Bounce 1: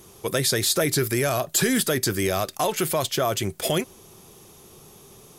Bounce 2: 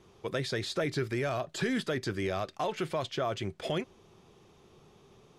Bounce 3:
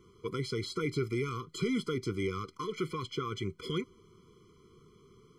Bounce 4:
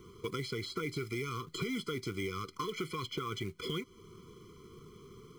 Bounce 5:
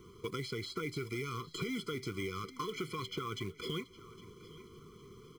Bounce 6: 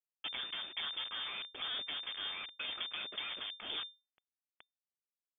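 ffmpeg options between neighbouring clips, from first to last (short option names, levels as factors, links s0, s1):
-af "lowpass=3600,volume=0.398"
-af "afftfilt=real='re*eq(mod(floor(b*sr/1024/490),2),0)':imag='im*eq(mod(floor(b*sr/1024/490),2),0)':win_size=1024:overlap=0.75"
-filter_complex "[0:a]acrossover=split=1600|3400[s0][s1][s2];[s0]acompressor=threshold=0.00708:ratio=4[s3];[s1]acompressor=threshold=0.00316:ratio=4[s4];[s2]acompressor=threshold=0.00158:ratio=4[s5];[s3][s4][s5]amix=inputs=3:normalize=0,acrusher=bits=5:mode=log:mix=0:aa=0.000001,volume=2"
-af "aecho=1:1:811|1622|2433:0.126|0.0466|0.0172,volume=0.841"
-af "acrusher=bits=4:dc=4:mix=0:aa=0.000001,lowpass=f=3100:t=q:w=0.5098,lowpass=f=3100:t=q:w=0.6013,lowpass=f=3100:t=q:w=0.9,lowpass=f=3100:t=q:w=2.563,afreqshift=-3600,volume=1.12"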